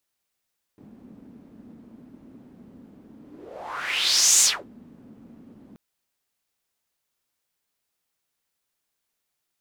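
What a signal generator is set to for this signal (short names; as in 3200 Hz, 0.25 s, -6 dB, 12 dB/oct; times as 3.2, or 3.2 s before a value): whoosh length 4.98 s, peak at 3.65, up 1.31 s, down 0.25 s, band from 240 Hz, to 7100 Hz, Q 4.2, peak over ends 31.5 dB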